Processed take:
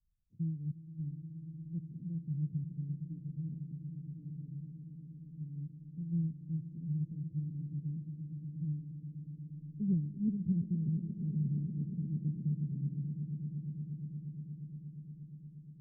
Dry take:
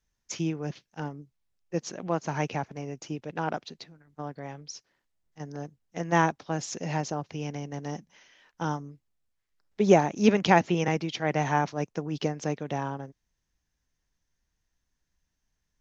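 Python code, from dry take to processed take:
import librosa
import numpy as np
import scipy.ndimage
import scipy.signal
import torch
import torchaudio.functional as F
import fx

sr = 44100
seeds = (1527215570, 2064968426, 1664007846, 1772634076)

y = scipy.signal.sosfilt(scipy.signal.cheby2(4, 70, 750.0, 'lowpass', fs=sr, output='sos'), x)
y = fx.echo_swell(y, sr, ms=118, loudest=8, wet_db=-15)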